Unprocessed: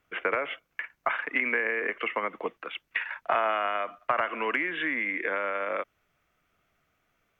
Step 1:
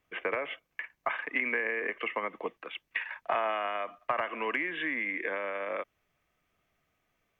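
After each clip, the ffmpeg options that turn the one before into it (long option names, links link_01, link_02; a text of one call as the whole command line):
ffmpeg -i in.wav -af "bandreject=frequency=1400:width=6.7,volume=-3dB" out.wav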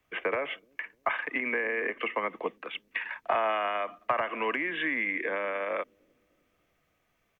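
ffmpeg -i in.wav -filter_complex "[0:a]acrossover=split=180|270|1100[link_01][link_02][link_03][link_04];[link_02]aecho=1:1:301|602|903|1204|1505:0.224|0.116|0.0605|0.0315|0.0164[link_05];[link_04]alimiter=limit=-23.5dB:level=0:latency=1:release=153[link_06];[link_01][link_05][link_03][link_06]amix=inputs=4:normalize=0,volume=3dB" out.wav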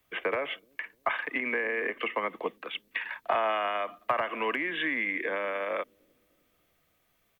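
ffmpeg -i in.wav -af "aexciter=amount=1.9:drive=4.5:freq=3400" out.wav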